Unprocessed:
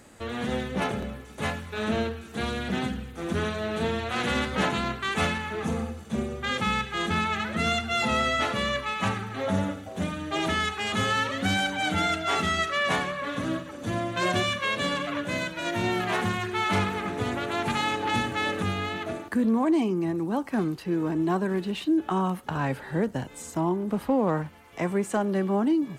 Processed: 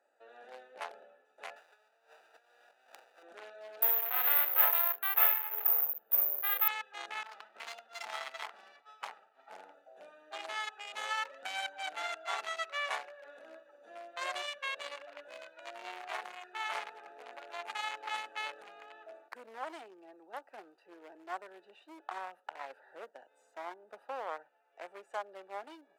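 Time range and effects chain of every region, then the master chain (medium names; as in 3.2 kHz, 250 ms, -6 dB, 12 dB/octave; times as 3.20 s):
1.56–3.23 s: square wave that keeps the level + high-pass 1.5 kHz 6 dB/octave + compressor with a negative ratio -39 dBFS, ratio -0.5
3.82–6.68 s: tone controls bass +6 dB, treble -15 dB + flutter echo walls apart 9.8 m, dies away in 0.27 s + careless resampling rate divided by 3×, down filtered, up zero stuff
7.23–9.74 s: comb filter that takes the minimum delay 0.93 ms + expander -31 dBFS
whole clip: local Wiener filter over 41 samples; high-pass 680 Hz 24 dB/octave; trim -5 dB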